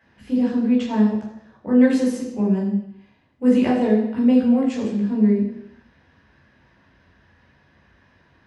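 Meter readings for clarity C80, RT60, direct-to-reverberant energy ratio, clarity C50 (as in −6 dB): 6.5 dB, 0.80 s, −4.5 dB, 3.5 dB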